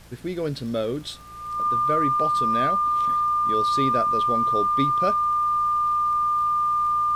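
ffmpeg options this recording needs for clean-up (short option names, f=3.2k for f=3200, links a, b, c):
-af "adeclick=t=4,bandreject=f=57:t=h:w=4,bandreject=f=114:t=h:w=4,bandreject=f=171:t=h:w=4,bandreject=f=1.2k:w=30,agate=range=-21dB:threshold=-26dB"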